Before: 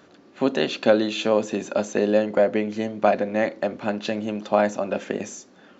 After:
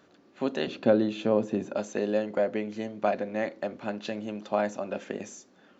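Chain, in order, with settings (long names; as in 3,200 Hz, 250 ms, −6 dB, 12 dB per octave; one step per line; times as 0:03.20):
0:00.67–0:01.76: spectral tilt −3 dB per octave
level −7.5 dB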